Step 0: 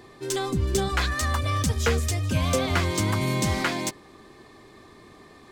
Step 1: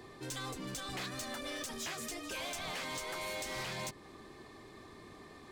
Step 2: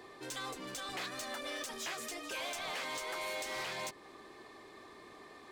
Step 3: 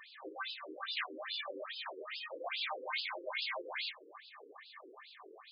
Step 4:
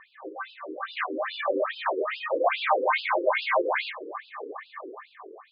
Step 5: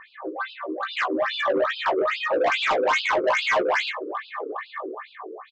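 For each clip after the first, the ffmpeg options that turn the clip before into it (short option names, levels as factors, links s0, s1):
-filter_complex "[0:a]afftfilt=real='re*lt(hypot(re,im),0.158)':imag='im*lt(hypot(re,im),0.158)':win_size=1024:overlap=0.75,acrossover=split=130[s0][s1];[s1]alimiter=limit=0.0794:level=0:latency=1:release=178[s2];[s0][s2]amix=inputs=2:normalize=0,asoftclip=type=tanh:threshold=0.0251,volume=0.668"
-af "bass=f=250:g=-13,treble=f=4000:g=-3,volume=1.19"
-af "flanger=delay=16.5:depth=6.5:speed=2.2,aemphasis=mode=production:type=bsi,afftfilt=real='re*between(b*sr/1024,360*pow(3700/360,0.5+0.5*sin(2*PI*2.4*pts/sr))/1.41,360*pow(3700/360,0.5+0.5*sin(2*PI*2.4*pts/sr))*1.41)':imag='im*between(b*sr/1024,360*pow(3700/360,0.5+0.5*sin(2*PI*2.4*pts/sr))/1.41,360*pow(3700/360,0.5+0.5*sin(2*PI*2.4*pts/sr))*1.41)':win_size=1024:overlap=0.75,volume=2.82"
-af "lowpass=1400,dynaudnorm=f=250:g=9:m=3.76,volume=2.51"
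-filter_complex "[0:a]aresample=16000,asoftclip=type=tanh:threshold=0.0631,aresample=44100,asplit=2[s0][s1];[s1]adelay=16,volume=0.447[s2];[s0][s2]amix=inputs=2:normalize=0,volume=2.11"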